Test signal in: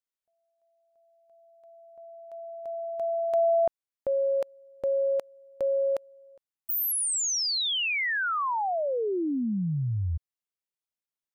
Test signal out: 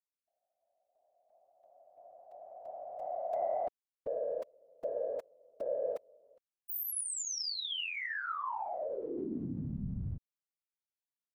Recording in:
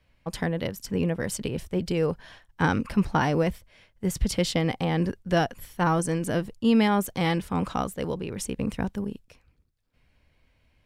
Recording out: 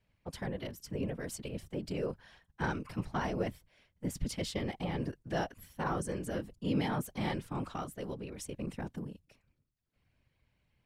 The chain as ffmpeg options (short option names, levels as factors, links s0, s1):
-af "asoftclip=type=tanh:threshold=0.251,afftfilt=real='hypot(re,im)*cos(2*PI*random(0))':imag='hypot(re,im)*sin(2*PI*random(1))':win_size=512:overlap=0.75,volume=0.631"